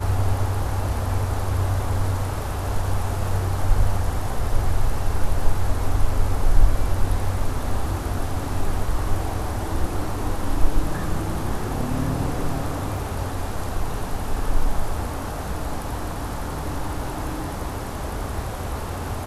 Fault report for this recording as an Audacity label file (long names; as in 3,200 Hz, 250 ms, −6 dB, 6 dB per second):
12.970000	12.970000	drop-out 2.1 ms